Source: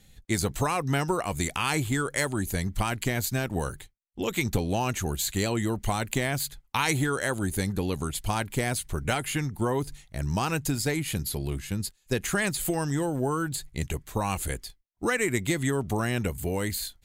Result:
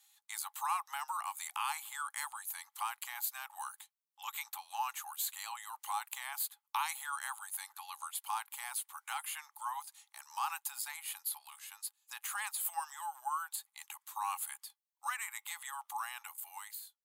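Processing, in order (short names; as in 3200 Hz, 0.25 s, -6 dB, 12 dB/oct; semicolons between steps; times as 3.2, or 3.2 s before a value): ending faded out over 0.71 s; in parallel at -1.5 dB: limiter -17 dBFS, peak gain reduction 7.5 dB; on the sum: dynamic EQ 6000 Hz, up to -8 dB, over -44 dBFS, Q 1.1; rippled Chebyshev high-pass 810 Hz, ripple 6 dB; bell 2600 Hz -15 dB 2.6 oct; gain +1.5 dB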